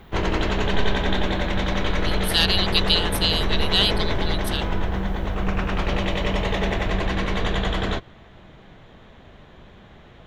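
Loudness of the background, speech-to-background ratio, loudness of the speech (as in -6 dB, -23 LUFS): -25.0 LUFS, 2.5 dB, -22.5 LUFS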